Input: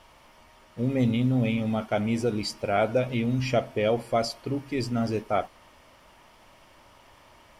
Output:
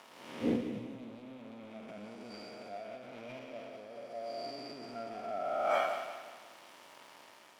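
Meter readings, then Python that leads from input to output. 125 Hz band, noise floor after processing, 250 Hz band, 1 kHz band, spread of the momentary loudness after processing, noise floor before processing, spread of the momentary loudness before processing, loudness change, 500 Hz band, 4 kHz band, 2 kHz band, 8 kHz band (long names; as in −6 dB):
−24.0 dB, −57 dBFS, −13.5 dB, −6.0 dB, 21 LU, −56 dBFS, 6 LU, −12.5 dB, −11.0 dB, −11.5 dB, −9.0 dB, −14.0 dB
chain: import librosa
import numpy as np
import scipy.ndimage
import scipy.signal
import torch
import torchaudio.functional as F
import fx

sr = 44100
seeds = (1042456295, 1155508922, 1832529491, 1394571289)

y = fx.spec_blur(x, sr, span_ms=678.0)
y = fx.leveller(y, sr, passes=3)
y = scipy.signal.sosfilt(scipy.signal.butter(2, 270.0, 'highpass', fs=sr, output='sos'), y)
y = fx.over_compress(y, sr, threshold_db=-35.0, ratio=-1.0)
y = fx.noise_reduce_blind(y, sr, reduce_db=13)
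y = fx.dynamic_eq(y, sr, hz=2600.0, q=1.0, threshold_db=-57.0, ratio=4.0, max_db=4)
y = fx.echo_feedback(y, sr, ms=177, feedback_pct=43, wet_db=-9.5)
y = fx.doppler_dist(y, sr, depth_ms=0.16)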